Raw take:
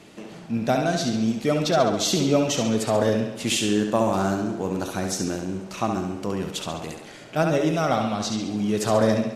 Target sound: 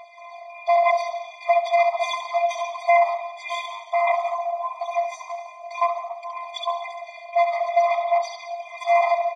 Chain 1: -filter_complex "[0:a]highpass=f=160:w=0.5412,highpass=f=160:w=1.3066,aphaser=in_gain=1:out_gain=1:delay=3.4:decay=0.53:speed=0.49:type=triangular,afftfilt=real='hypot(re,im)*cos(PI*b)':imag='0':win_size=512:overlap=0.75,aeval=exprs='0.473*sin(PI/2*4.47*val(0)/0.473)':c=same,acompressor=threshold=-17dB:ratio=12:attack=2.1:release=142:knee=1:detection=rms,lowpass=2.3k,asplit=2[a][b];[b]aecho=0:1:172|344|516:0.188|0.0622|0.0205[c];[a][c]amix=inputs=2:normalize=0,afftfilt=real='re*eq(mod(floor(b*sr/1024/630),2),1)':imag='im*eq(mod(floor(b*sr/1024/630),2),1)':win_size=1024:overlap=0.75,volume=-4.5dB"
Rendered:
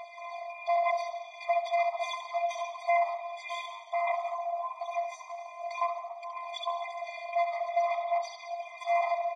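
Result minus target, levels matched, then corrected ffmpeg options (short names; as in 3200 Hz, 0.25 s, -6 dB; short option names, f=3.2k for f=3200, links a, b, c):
compressor: peak gain reduction +9.5 dB
-filter_complex "[0:a]highpass=f=160:w=0.5412,highpass=f=160:w=1.3066,aphaser=in_gain=1:out_gain=1:delay=3.4:decay=0.53:speed=0.49:type=triangular,afftfilt=real='hypot(re,im)*cos(PI*b)':imag='0':win_size=512:overlap=0.75,aeval=exprs='0.473*sin(PI/2*4.47*val(0)/0.473)':c=same,lowpass=2.3k,asplit=2[a][b];[b]aecho=0:1:172|344|516:0.188|0.0622|0.0205[c];[a][c]amix=inputs=2:normalize=0,afftfilt=real='re*eq(mod(floor(b*sr/1024/630),2),1)':imag='im*eq(mod(floor(b*sr/1024/630),2),1)':win_size=1024:overlap=0.75,volume=-4.5dB"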